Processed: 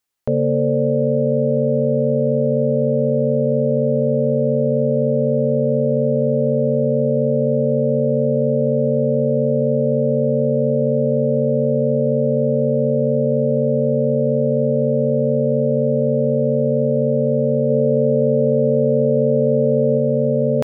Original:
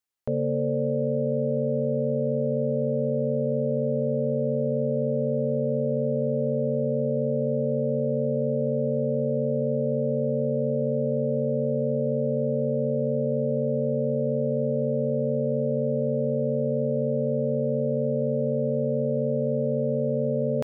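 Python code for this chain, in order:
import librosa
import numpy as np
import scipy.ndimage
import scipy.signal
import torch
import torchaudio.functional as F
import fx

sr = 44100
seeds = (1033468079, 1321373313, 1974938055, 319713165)

y = fx.peak_eq(x, sr, hz=390.0, db=3.5, octaves=0.77, at=(17.7, 19.98))
y = F.gain(torch.from_numpy(y), 8.0).numpy()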